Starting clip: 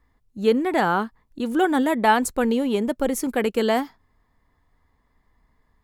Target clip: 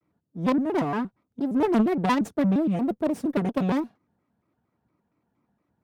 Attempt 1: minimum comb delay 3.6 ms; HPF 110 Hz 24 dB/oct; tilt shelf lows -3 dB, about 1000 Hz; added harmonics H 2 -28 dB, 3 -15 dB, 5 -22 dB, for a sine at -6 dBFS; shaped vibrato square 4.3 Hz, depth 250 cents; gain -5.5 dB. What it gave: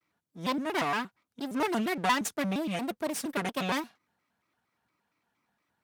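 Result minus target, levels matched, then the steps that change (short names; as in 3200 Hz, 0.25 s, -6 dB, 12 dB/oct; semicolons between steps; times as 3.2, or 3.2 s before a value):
1000 Hz band +4.5 dB
change: tilt shelf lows +9 dB, about 1000 Hz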